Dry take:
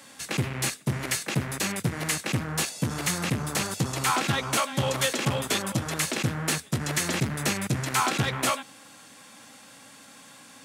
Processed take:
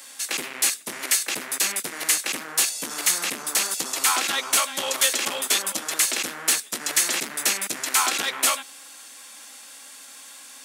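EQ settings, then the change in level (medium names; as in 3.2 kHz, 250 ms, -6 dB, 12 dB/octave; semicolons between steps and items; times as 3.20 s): high-pass 240 Hz 24 dB/octave; tilt EQ +3 dB/octave; 0.0 dB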